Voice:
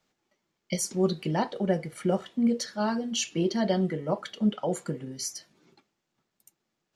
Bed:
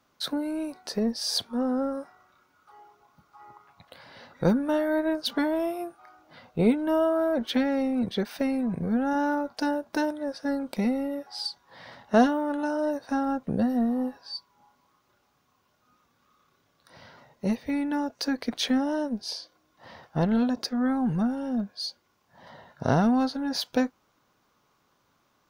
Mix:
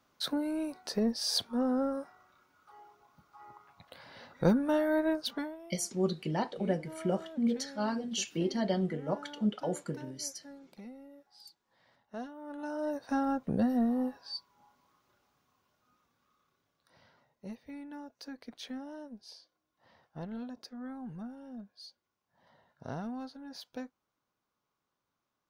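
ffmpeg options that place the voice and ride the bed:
-filter_complex "[0:a]adelay=5000,volume=-5dB[a];[1:a]volume=15.5dB,afade=t=out:st=5.1:d=0.47:silence=0.112202,afade=t=in:st=12.35:d=0.83:silence=0.11885,afade=t=out:st=14.97:d=2.35:silence=0.211349[b];[a][b]amix=inputs=2:normalize=0"

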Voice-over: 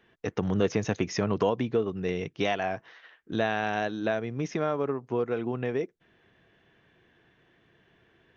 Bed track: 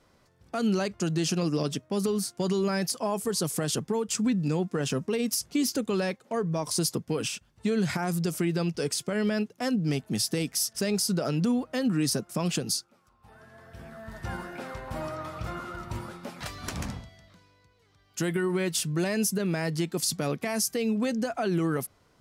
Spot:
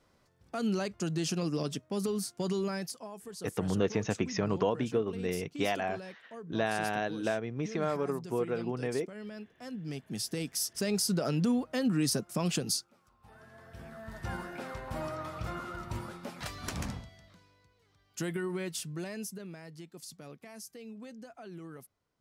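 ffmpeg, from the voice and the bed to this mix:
-filter_complex "[0:a]adelay=3200,volume=-3.5dB[a];[1:a]volume=9dB,afade=t=out:st=2.57:d=0.52:silence=0.266073,afade=t=in:st=9.61:d=1.46:silence=0.199526,afade=t=out:st=17.28:d=2.34:silence=0.149624[b];[a][b]amix=inputs=2:normalize=0"

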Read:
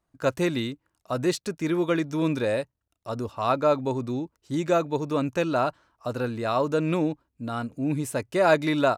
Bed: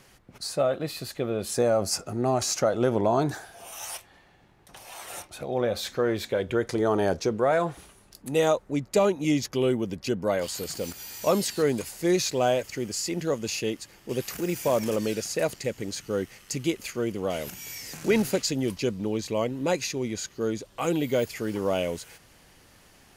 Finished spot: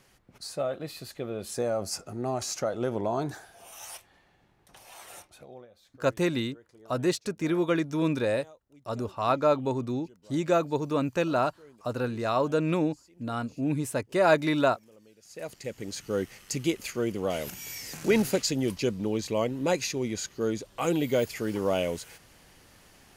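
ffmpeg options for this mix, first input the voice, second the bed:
-filter_complex "[0:a]adelay=5800,volume=-1.5dB[a];[1:a]volume=23dB,afade=t=out:st=5.02:d=0.65:silence=0.0668344,afade=t=in:st=15.2:d=1:silence=0.0354813[b];[a][b]amix=inputs=2:normalize=0"

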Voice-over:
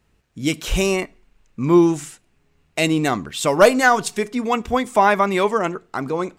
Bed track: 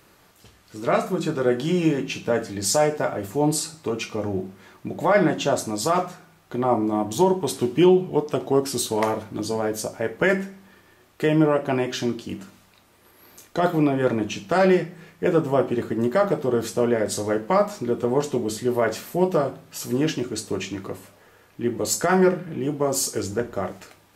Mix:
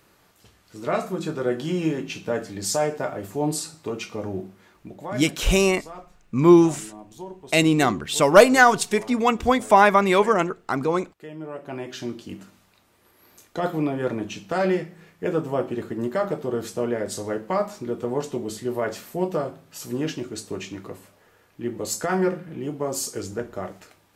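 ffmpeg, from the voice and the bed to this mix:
-filter_complex "[0:a]adelay=4750,volume=0.5dB[a];[1:a]volume=11dB,afade=t=out:st=4.35:d=0.91:silence=0.16788,afade=t=in:st=11.4:d=0.87:silence=0.188365[b];[a][b]amix=inputs=2:normalize=0"

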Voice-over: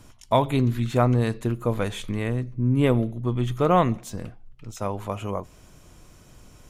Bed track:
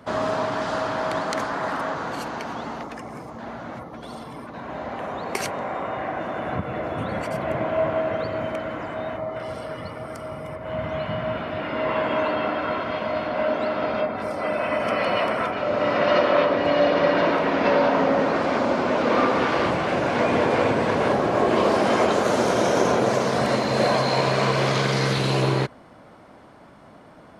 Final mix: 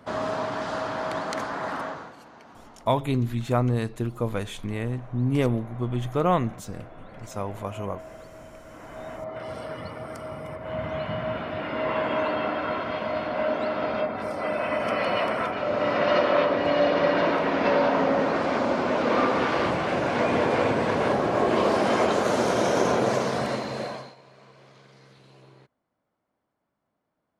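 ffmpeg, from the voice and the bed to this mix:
-filter_complex "[0:a]adelay=2550,volume=-3dB[a];[1:a]volume=11.5dB,afade=t=out:st=1.8:d=0.34:silence=0.199526,afade=t=in:st=8.64:d=0.98:silence=0.16788,afade=t=out:st=23.14:d=1.01:silence=0.0354813[b];[a][b]amix=inputs=2:normalize=0"

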